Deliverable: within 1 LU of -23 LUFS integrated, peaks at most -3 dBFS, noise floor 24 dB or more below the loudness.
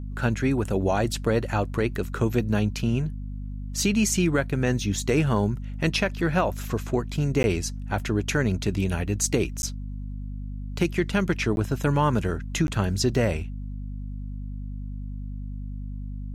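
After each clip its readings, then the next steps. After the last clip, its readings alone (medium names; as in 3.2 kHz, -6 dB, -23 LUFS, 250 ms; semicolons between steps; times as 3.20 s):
dropouts 4; longest dropout 11 ms; hum 50 Hz; highest harmonic 250 Hz; hum level -30 dBFS; loudness -25.5 LUFS; peak level -10.5 dBFS; loudness target -23.0 LUFS
-> interpolate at 7.43/9.62/11.56/12.67 s, 11 ms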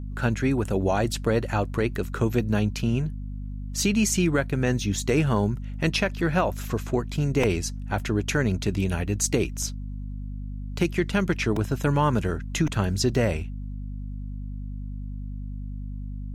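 dropouts 0; hum 50 Hz; highest harmonic 250 Hz; hum level -30 dBFS
-> hum notches 50/100/150/200/250 Hz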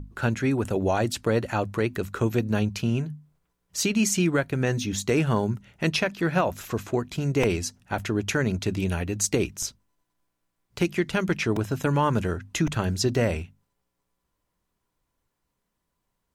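hum not found; loudness -26.0 LUFS; peak level -11.0 dBFS; loudness target -23.0 LUFS
-> trim +3 dB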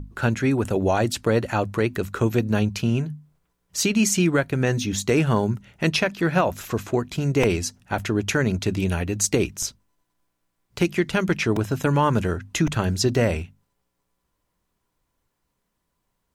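loudness -23.0 LUFS; peak level -8.0 dBFS; noise floor -76 dBFS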